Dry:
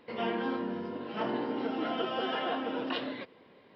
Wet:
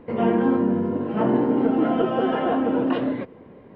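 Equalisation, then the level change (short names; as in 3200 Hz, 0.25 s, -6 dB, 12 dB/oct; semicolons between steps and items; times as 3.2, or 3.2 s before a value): tilt -3.5 dB/oct; bell 4600 Hz -11 dB 1.2 oct; +8.0 dB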